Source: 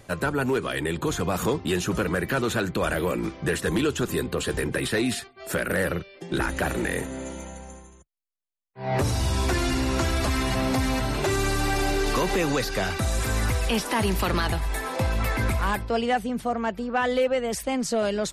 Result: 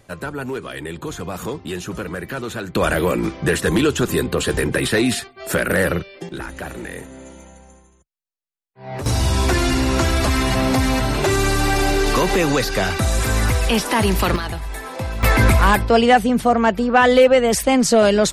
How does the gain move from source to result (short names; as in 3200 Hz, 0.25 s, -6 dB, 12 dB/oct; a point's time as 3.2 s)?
-2.5 dB
from 2.75 s +7 dB
from 6.29 s -4.5 dB
from 9.06 s +6.5 dB
from 14.36 s -1 dB
from 15.23 s +11 dB